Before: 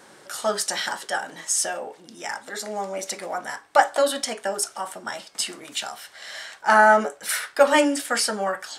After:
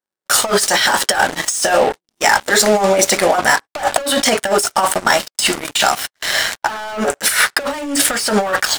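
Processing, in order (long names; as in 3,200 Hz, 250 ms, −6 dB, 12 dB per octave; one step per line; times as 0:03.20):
leveller curve on the samples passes 5
noise gate −25 dBFS, range −36 dB
compressor whose output falls as the input rises −13 dBFS, ratio −0.5
level −1 dB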